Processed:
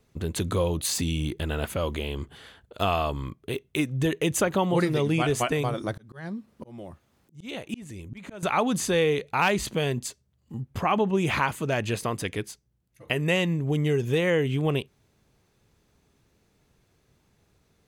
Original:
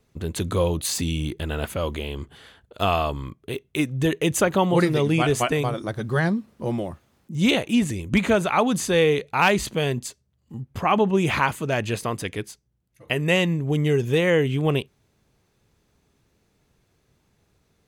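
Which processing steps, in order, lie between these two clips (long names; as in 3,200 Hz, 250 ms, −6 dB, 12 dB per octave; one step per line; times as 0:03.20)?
0:05.93–0:08.43: volume swells 717 ms
downward compressor 1.5 to 1, threshold −26 dBFS, peak gain reduction 5 dB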